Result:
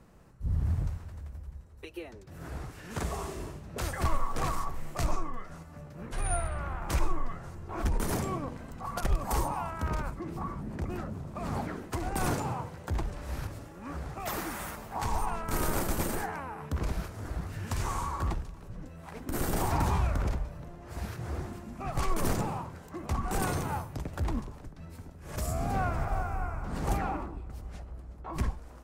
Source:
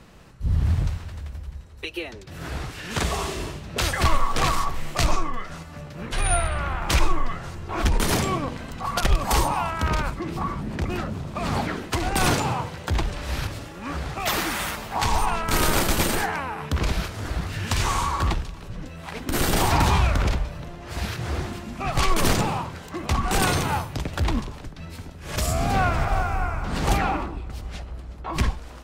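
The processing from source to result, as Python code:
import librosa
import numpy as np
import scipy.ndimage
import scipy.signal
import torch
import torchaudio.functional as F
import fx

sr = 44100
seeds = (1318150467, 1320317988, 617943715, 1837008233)

y = fx.peak_eq(x, sr, hz=3400.0, db=-10.5, octaves=1.7)
y = F.gain(torch.from_numpy(y), -7.5).numpy()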